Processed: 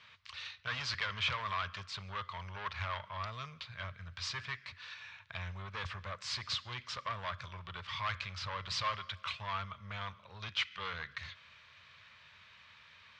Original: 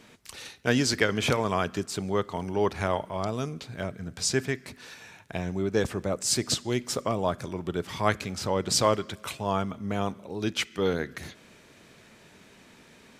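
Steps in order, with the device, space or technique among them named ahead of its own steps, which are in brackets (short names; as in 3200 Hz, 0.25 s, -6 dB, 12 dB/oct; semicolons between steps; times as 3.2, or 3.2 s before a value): scooped metal amplifier (tube stage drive 26 dB, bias 0.35; speaker cabinet 82–4000 Hz, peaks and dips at 89 Hz +8 dB, 180 Hz -4 dB, 290 Hz -9 dB, 420 Hz -6 dB, 760 Hz -8 dB, 1100 Hz +8 dB; passive tone stack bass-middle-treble 10-0-10); gain +4 dB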